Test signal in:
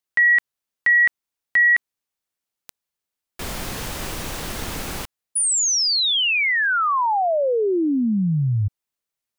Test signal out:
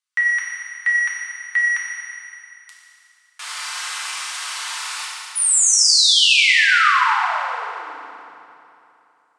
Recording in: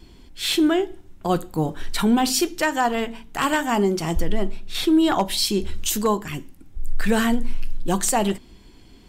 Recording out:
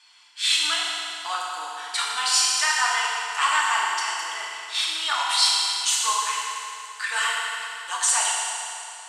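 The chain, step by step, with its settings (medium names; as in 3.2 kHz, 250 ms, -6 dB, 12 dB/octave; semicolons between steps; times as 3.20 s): in parallel at -8 dB: saturation -19 dBFS; on the sum: elliptic band-pass 1.1–9.1 kHz, stop band 80 dB; FDN reverb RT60 2.9 s, high-frequency decay 0.85×, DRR -5 dB; trim -2 dB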